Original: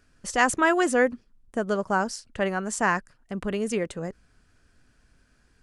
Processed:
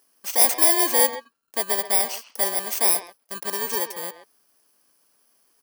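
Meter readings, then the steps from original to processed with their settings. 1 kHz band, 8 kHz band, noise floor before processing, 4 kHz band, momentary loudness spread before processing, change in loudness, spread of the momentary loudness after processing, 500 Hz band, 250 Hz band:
-2.0 dB, +12.5 dB, -64 dBFS, +10.0 dB, 14 LU, +6.0 dB, 16 LU, -2.5 dB, -9.0 dB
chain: bit-reversed sample order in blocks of 32 samples; high-pass 600 Hz 12 dB/octave; peaking EQ 2.3 kHz -4 dB 1.1 oct; speakerphone echo 130 ms, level -11 dB; trim +5 dB

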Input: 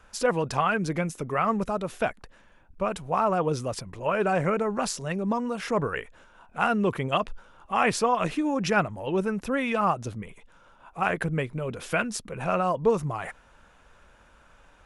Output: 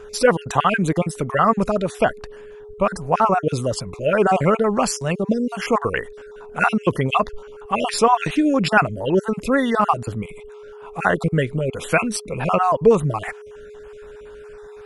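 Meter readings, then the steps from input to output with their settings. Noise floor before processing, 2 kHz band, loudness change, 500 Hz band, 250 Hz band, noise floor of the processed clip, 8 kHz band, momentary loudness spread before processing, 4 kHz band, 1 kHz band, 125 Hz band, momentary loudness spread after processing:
-57 dBFS, +6.5 dB, +7.0 dB, +7.5 dB, +7.5 dB, -40 dBFS, +6.5 dB, 8 LU, +7.0 dB, +7.0 dB, +7.5 dB, 13 LU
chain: random holes in the spectrogram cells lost 33%; whistle 420 Hz -46 dBFS; trim +9 dB

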